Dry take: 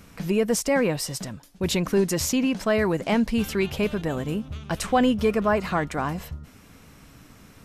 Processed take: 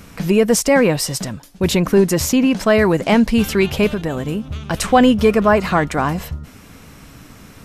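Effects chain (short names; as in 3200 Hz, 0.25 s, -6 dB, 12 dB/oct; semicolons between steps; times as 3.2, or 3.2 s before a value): 1.7–2.51 bell 5300 Hz -4 dB 2.4 oct; 3.91–4.74 compressor 2:1, threshold -29 dBFS, peak gain reduction 4.5 dB; gain +8.5 dB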